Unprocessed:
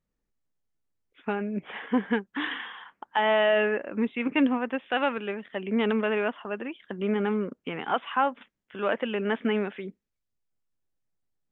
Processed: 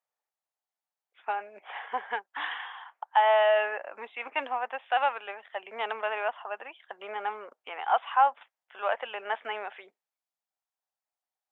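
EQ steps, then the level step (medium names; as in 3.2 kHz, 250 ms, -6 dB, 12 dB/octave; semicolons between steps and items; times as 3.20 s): ladder high-pass 660 Hz, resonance 55%; +6.5 dB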